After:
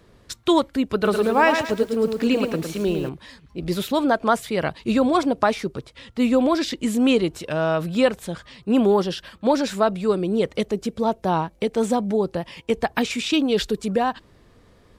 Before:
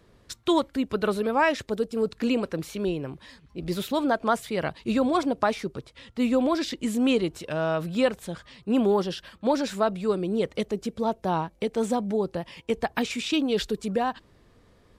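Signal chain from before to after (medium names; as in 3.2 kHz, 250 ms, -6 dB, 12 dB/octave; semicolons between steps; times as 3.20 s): 0.94–3.09 s: bit-crushed delay 108 ms, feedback 35%, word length 8-bit, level -6 dB; trim +4.5 dB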